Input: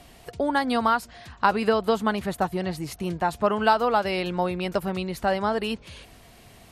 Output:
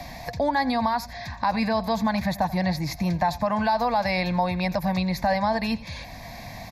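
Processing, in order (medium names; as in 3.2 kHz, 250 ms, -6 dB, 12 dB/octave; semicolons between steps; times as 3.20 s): peak limiter -18 dBFS, peak gain reduction 11.5 dB; static phaser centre 2 kHz, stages 8; delay 86 ms -18.5 dB; three bands compressed up and down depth 40%; trim +7.5 dB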